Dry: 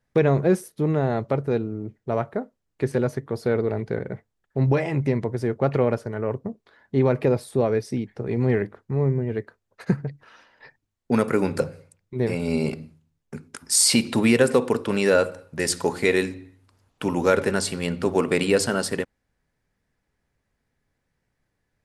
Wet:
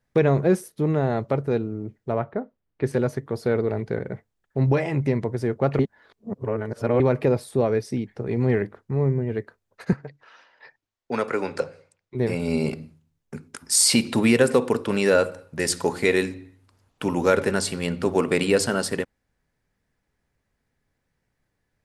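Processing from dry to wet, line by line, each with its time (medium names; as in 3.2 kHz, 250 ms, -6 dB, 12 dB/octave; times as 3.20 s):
2.12–2.84 s: distance through air 240 m
5.79–7.00 s: reverse
9.93–12.15 s: three-band isolator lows -12 dB, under 390 Hz, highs -19 dB, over 7.5 kHz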